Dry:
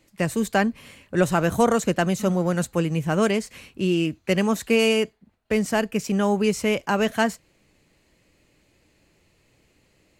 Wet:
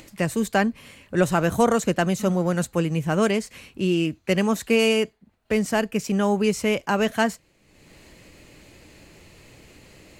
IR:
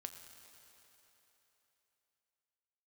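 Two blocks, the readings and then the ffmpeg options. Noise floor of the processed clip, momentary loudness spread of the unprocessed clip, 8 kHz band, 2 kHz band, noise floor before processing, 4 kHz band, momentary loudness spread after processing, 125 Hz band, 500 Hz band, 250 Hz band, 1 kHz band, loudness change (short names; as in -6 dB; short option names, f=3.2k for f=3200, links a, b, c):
-62 dBFS, 6 LU, 0.0 dB, 0.0 dB, -64 dBFS, 0.0 dB, 6 LU, 0.0 dB, 0.0 dB, 0.0 dB, 0.0 dB, 0.0 dB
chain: -af "acompressor=mode=upward:threshold=-36dB:ratio=2.5"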